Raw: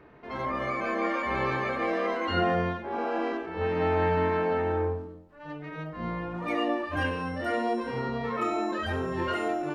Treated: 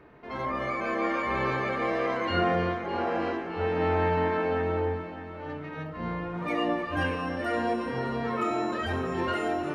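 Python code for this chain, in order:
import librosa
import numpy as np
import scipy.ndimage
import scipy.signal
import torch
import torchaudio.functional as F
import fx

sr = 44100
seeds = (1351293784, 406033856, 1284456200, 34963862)

y = fx.echo_heads(x, sr, ms=305, heads='first and second', feedback_pct=54, wet_db=-14.0)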